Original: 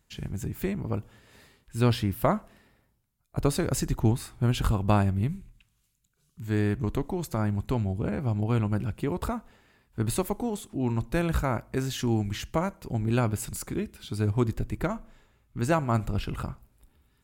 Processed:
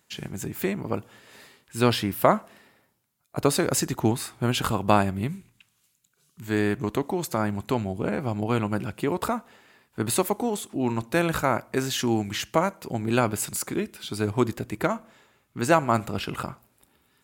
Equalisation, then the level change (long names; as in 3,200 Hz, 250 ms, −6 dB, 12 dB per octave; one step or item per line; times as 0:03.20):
high-pass filter 100 Hz 12 dB per octave
low-shelf EQ 190 Hz −12 dB
+7.0 dB